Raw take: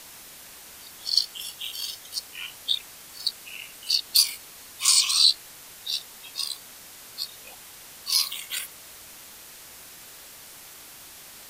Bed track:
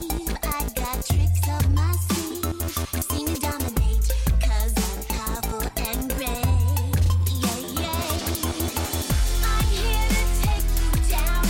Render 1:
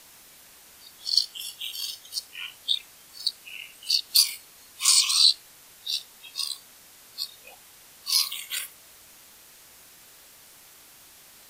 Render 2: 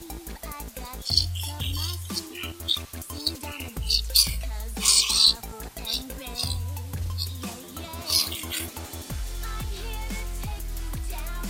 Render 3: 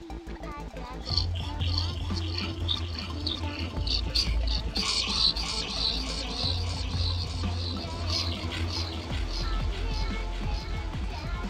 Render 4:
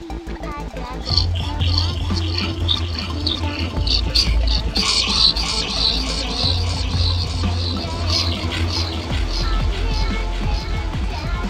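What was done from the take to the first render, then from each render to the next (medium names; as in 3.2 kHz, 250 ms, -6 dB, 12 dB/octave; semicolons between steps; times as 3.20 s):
noise print and reduce 6 dB
add bed track -11 dB
distance through air 180 m; on a send: echo whose repeats swap between lows and highs 302 ms, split 870 Hz, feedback 82%, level -3 dB
trim +10 dB; peak limiter -2 dBFS, peak gain reduction 1.5 dB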